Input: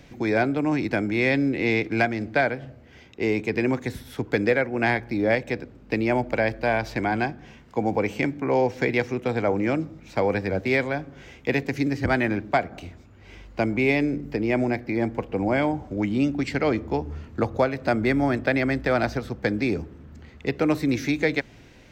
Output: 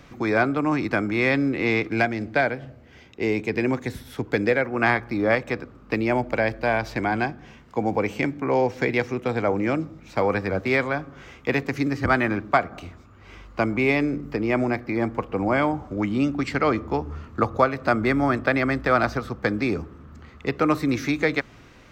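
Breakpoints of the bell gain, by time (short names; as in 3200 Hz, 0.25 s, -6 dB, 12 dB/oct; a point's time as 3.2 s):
bell 1200 Hz 0.43 oct
+13 dB
from 1.89 s +3 dB
from 4.65 s +14.5 dB
from 5.95 s +5.5 dB
from 10.21 s +12.5 dB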